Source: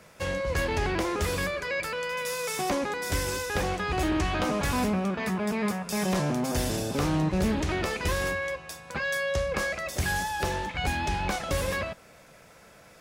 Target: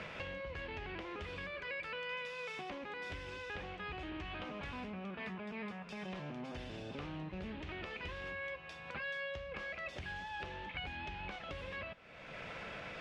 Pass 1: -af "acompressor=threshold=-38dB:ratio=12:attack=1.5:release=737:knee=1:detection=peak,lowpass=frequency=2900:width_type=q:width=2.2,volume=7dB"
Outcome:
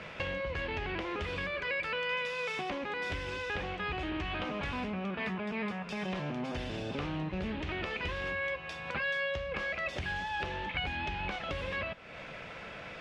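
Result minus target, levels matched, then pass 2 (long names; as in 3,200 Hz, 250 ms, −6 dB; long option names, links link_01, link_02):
downward compressor: peak gain reduction −8 dB
-af "acompressor=threshold=-47dB:ratio=12:attack=1.5:release=737:knee=1:detection=peak,lowpass=frequency=2900:width_type=q:width=2.2,volume=7dB"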